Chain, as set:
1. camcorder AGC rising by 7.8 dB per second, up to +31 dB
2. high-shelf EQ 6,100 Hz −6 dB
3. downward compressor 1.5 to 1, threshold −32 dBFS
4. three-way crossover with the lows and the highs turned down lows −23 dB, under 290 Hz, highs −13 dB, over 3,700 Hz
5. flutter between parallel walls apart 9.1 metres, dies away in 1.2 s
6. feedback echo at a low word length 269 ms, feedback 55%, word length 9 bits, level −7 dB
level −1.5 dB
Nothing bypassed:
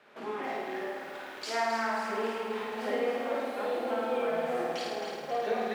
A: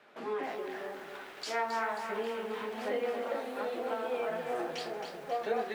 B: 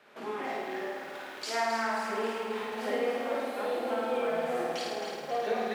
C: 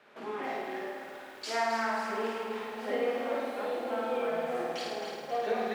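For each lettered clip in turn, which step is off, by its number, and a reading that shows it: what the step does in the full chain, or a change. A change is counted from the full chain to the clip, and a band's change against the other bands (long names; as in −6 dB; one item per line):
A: 5, change in integrated loudness −3.0 LU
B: 2, 8 kHz band +2.5 dB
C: 1, change in momentary loudness spread +1 LU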